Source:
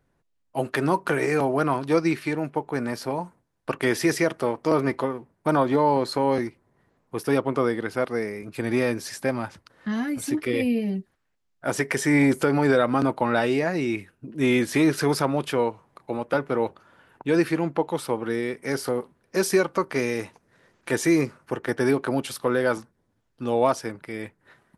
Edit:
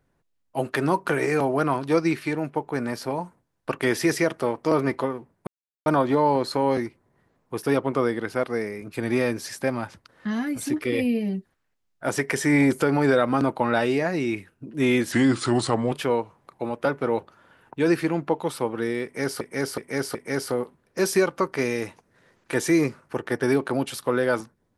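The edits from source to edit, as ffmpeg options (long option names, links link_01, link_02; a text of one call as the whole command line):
ffmpeg -i in.wav -filter_complex "[0:a]asplit=7[link_01][link_02][link_03][link_04][link_05][link_06][link_07];[link_01]atrim=end=5.47,asetpts=PTS-STARTPTS,afade=type=out:start_time=5.466:duration=0.004:curve=hsin,apad=pad_dur=0.39[link_08];[link_02]atrim=start=5.47:end=14.734,asetpts=PTS-STARTPTS,afade=type=in:duration=0.004:curve=hsin[link_09];[link_03]atrim=start=14.73:end=15.4,asetpts=PTS-STARTPTS,asetrate=37044,aresample=44100[link_10];[link_04]atrim=start=15.396:end=18.892[link_11];[link_05]atrim=start=18.518:end=18.892[link_12];[link_06]atrim=start=18.518:end=18.892[link_13];[link_07]atrim=start=18.518[link_14];[link_08][link_09]concat=n=2:v=0:a=1[link_15];[link_15][link_10]acrossfade=duration=0.004:curve1=hsin:curve2=hsin[link_16];[link_16][link_11]acrossfade=duration=0.004:curve1=hsin:curve2=hsin[link_17];[link_17][link_12]acrossfade=duration=0.004:curve1=hsin:curve2=hsin[link_18];[link_18][link_13]acrossfade=duration=0.004:curve1=hsin:curve2=hsin[link_19];[link_19][link_14]acrossfade=duration=0.004:curve1=hsin:curve2=hsin" out.wav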